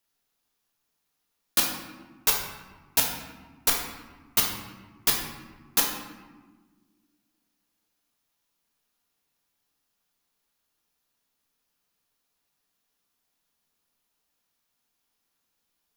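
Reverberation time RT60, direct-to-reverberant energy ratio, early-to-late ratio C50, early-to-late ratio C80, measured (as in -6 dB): 1.5 s, -0.5 dB, 4.0 dB, 6.5 dB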